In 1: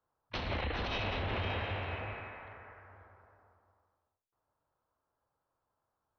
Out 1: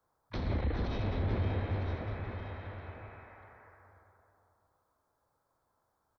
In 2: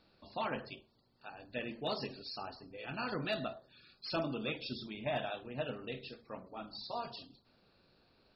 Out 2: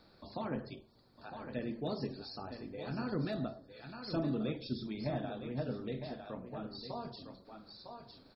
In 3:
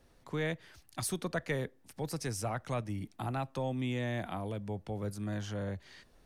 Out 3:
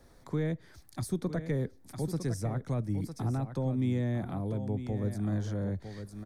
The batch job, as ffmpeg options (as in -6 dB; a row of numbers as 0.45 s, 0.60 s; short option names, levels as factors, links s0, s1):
-filter_complex "[0:a]equalizer=f=2800:w=4.6:g=-12.5,aecho=1:1:955:0.299,acrossover=split=420[s0][s1];[s1]acompressor=threshold=0.00112:ratio=2[s2];[s0][s2]amix=inputs=2:normalize=0,volume=2"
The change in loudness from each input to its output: +1.0 LU, +0.5 LU, +3.5 LU